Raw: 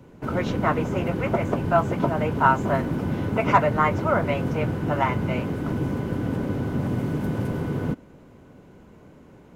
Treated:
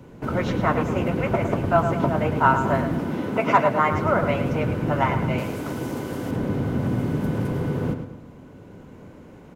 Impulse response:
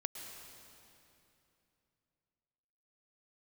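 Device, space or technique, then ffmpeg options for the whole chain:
ducked reverb: -filter_complex "[0:a]asettb=1/sr,asplit=3[s0][s1][s2];[s0]atrim=end=3.004[s3];[s1]atrim=start=3:end=3.92,asetpts=PTS-STARTPTS,afade=t=in:d=0.004:c=qsin,afade=t=out:st=0.916:d=0.004:c=qsin,highpass=190[s4];[s2]atrim=start=3.916[s5];[s3][s4]acrossfade=d=0.004:c1=hsin:c2=qsin[s6];[s6][s5]acrossfade=d=0.004:c1=qsin:c2=hsin,asplit=3[s7][s8][s9];[1:a]atrim=start_sample=2205[s10];[s8][s10]afir=irnorm=-1:irlink=0[s11];[s9]apad=whole_len=421395[s12];[s11][s12]sidechaincompress=threshold=0.0178:ratio=8:attack=16:release=1020,volume=0.596[s13];[s7][s13]amix=inputs=2:normalize=0,asettb=1/sr,asplit=3[s14][s15][s16];[s14]atrim=end=5.384[s17];[s15]atrim=start=5.38:end=6.31,asetpts=PTS-STARTPTS,afade=t=in:d=0.004:c=qsin,afade=t=out:st=0.926:d=0.004:c=qsin,bass=f=250:g=-9,treble=f=4000:g=10[s18];[s16]atrim=start=6.306[s19];[s17][s18]acrossfade=d=0.004:c1=hsin:c2=qsin[s20];[s20][s19]acrossfade=d=0.004:c1=qsin:c2=hsin,asplit=2[s21][s22];[s22]adelay=108,lowpass=f=4800:p=1,volume=0.398,asplit=2[s23][s24];[s24]adelay=108,lowpass=f=4800:p=1,volume=0.42,asplit=2[s25][s26];[s26]adelay=108,lowpass=f=4800:p=1,volume=0.42,asplit=2[s27][s28];[s28]adelay=108,lowpass=f=4800:p=1,volume=0.42,asplit=2[s29][s30];[s30]adelay=108,lowpass=f=4800:p=1,volume=0.42[s31];[s21][s23][s25][s27][s29][s31]amix=inputs=6:normalize=0"

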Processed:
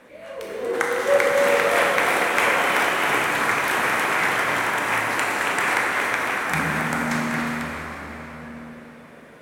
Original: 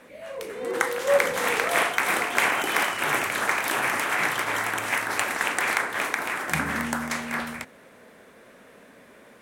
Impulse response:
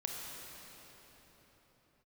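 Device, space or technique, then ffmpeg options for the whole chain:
swimming-pool hall: -filter_complex "[1:a]atrim=start_sample=2205[s0];[0:a][s0]afir=irnorm=-1:irlink=0,highshelf=f=4700:g=-5,volume=1.41"

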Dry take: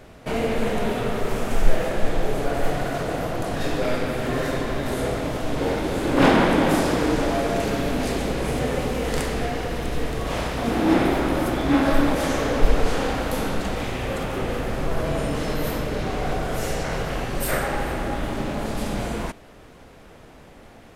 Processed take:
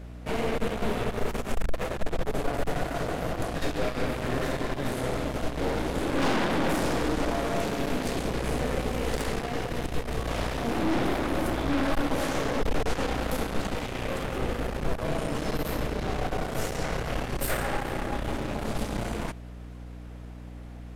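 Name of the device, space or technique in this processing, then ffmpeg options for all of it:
valve amplifier with mains hum: -af "aeval=exprs='(tanh(14.1*val(0)+0.8)-tanh(0.8))/14.1':c=same,aeval=exprs='val(0)+0.01*(sin(2*PI*60*n/s)+sin(2*PI*2*60*n/s)/2+sin(2*PI*3*60*n/s)/3+sin(2*PI*4*60*n/s)/4+sin(2*PI*5*60*n/s)/5)':c=same"

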